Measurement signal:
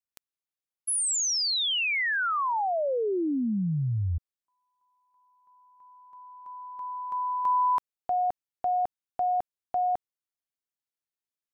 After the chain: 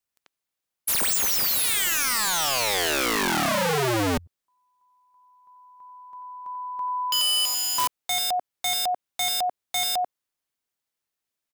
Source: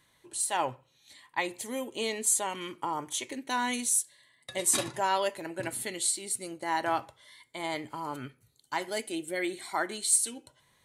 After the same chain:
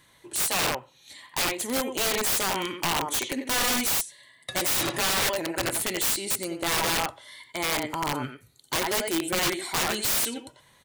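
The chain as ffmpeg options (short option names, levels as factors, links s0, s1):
-filter_complex "[0:a]asplit=2[s0][s1];[s1]adelay=90,highpass=300,lowpass=3400,asoftclip=type=hard:threshold=0.0891,volume=0.501[s2];[s0][s2]amix=inputs=2:normalize=0,aeval=exprs='(mod(22.4*val(0)+1,2)-1)/22.4':c=same,volume=2.37"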